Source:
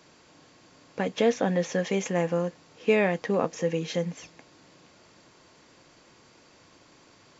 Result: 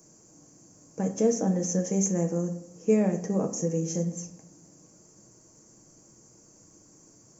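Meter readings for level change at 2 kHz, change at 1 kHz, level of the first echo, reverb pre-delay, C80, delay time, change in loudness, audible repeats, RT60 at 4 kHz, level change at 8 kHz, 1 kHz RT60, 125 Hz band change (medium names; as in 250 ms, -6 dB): -15.5 dB, -7.0 dB, no echo, 5 ms, 15.0 dB, no echo, -0.5 dB, no echo, 0.55 s, no reading, 0.60 s, +3.0 dB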